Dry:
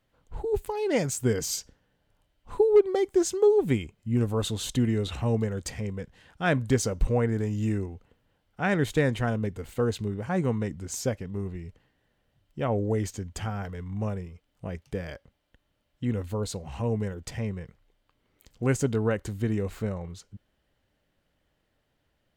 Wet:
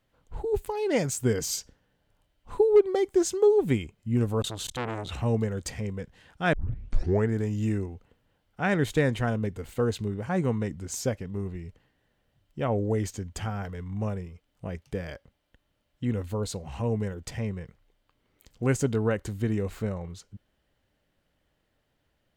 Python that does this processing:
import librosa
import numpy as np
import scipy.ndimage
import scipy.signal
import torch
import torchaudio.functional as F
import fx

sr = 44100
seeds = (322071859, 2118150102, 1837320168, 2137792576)

y = fx.transformer_sat(x, sr, knee_hz=1300.0, at=(4.42, 5.09))
y = fx.edit(y, sr, fx.tape_start(start_s=6.53, length_s=0.75), tone=tone)